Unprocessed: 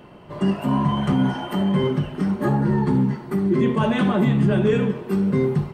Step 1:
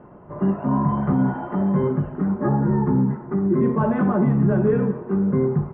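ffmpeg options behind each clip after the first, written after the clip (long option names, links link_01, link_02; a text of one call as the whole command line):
ffmpeg -i in.wav -af "lowpass=frequency=1500:width=0.5412,lowpass=frequency=1500:width=1.3066" out.wav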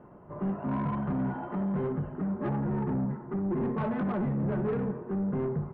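ffmpeg -i in.wav -af "asoftclip=type=tanh:threshold=-19dB,volume=-6.5dB" out.wav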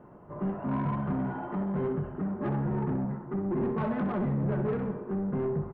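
ffmpeg -i in.wav -af "aecho=1:1:64|128|192|256|320|384:0.299|0.155|0.0807|0.042|0.0218|0.0114" out.wav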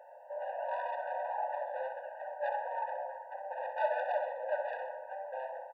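ffmpeg -i in.wav -af "afftfilt=real='re*eq(mod(floor(b*sr/1024/490),2),1)':imag='im*eq(mod(floor(b*sr/1024/490),2),1)':win_size=1024:overlap=0.75,volume=5.5dB" out.wav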